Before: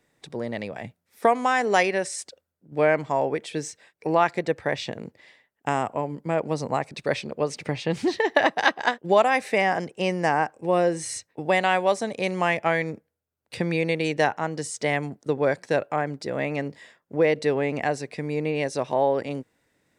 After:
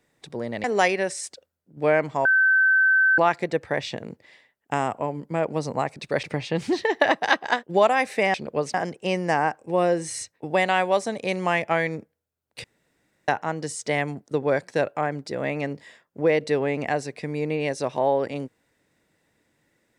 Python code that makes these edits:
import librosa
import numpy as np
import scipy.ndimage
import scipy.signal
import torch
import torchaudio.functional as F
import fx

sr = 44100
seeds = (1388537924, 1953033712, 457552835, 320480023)

y = fx.edit(x, sr, fx.cut(start_s=0.64, length_s=0.95),
    fx.bleep(start_s=3.2, length_s=0.93, hz=1540.0, db=-15.0),
    fx.move(start_s=7.18, length_s=0.4, to_s=9.69),
    fx.room_tone_fill(start_s=13.59, length_s=0.64), tone=tone)